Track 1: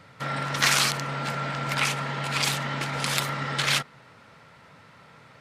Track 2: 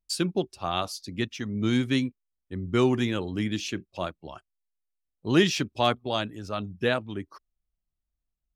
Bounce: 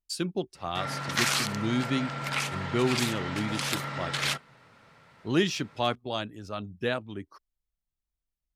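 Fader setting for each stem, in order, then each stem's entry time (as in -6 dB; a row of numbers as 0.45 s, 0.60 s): -5.0 dB, -4.0 dB; 0.55 s, 0.00 s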